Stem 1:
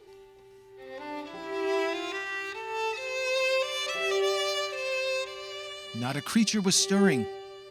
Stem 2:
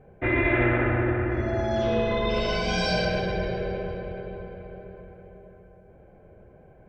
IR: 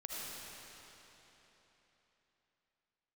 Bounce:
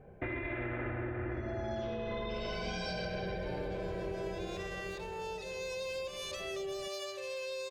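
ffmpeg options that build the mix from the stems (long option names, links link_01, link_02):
-filter_complex "[0:a]equalizer=frequency=1800:width_type=o:width=2.1:gain=-8,acompressor=threshold=-36dB:ratio=3,adelay=2450,volume=-2dB[link_01];[1:a]alimiter=limit=-20.5dB:level=0:latency=1:release=377,volume=-2.5dB[link_02];[link_01][link_02]amix=inputs=2:normalize=0,acompressor=threshold=-34dB:ratio=6"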